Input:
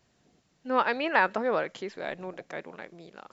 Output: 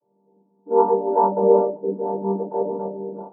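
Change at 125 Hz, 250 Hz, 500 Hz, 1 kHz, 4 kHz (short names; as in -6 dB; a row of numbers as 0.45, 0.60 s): n/a, +9.0 dB, +12.5 dB, +7.5 dB, under -40 dB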